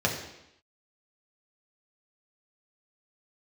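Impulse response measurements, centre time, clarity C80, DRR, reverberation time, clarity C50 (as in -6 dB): 30 ms, 8.5 dB, -2.0 dB, 0.85 s, 6.0 dB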